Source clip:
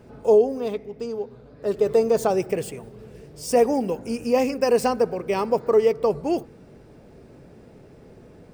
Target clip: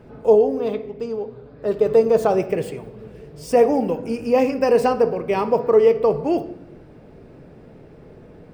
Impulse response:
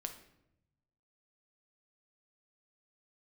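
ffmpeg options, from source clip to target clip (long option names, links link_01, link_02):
-filter_complex "[0:a]asplit=2[link_01][link_02];[1:a]atrim=start_sample=2205,lowpass=4200[link_03];[link_02][link_03]afir=irnorm=-1:irlink=0,volume=5.5dB[link_04];[link_01][link_04]amix=inputs=2:normalize=0,volume=-4.5dB"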